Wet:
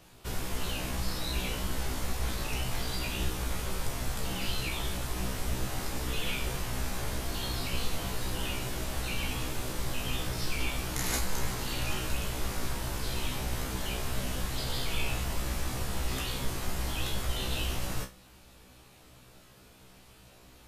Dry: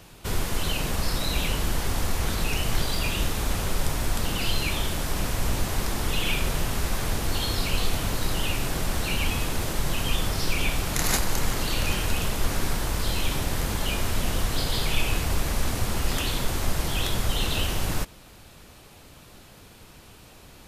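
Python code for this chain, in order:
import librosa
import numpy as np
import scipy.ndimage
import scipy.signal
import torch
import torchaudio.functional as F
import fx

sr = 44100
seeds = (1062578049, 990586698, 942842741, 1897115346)

y = fx.comb_fb(x, sr, f0_hz=63.0, decay_s=0.24, harmonics='all', damping=0.0, mix_pct=100)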